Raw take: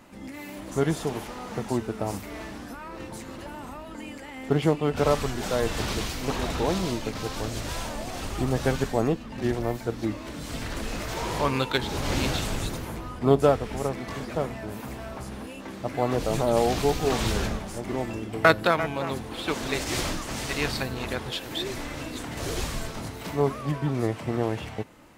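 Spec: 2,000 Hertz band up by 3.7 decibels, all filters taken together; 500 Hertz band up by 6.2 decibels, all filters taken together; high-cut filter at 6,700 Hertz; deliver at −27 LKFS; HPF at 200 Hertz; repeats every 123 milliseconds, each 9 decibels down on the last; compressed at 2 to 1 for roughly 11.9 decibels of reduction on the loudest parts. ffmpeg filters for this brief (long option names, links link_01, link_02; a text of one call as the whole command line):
ffmpeg -i in.wav -af "highpass=200,lowpass=6700,equalizer=frequency=500:width_type=o:gain=7.5,equalizer=frequency=2000:width_type=o:gain=4.5,acompressor=threshold=-31dB:ratio=2,aecho=1:1:123|246|369|492:0.355|0.124|0.0435|0.0152,volume=4dB" out.wav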